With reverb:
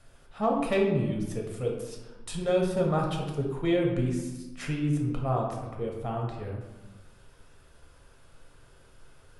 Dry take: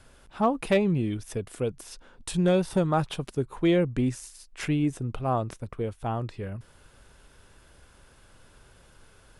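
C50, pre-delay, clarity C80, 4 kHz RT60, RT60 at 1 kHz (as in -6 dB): 3.5 dB, 4 ms, 6.0 dB, 0.70 s, 1.1 s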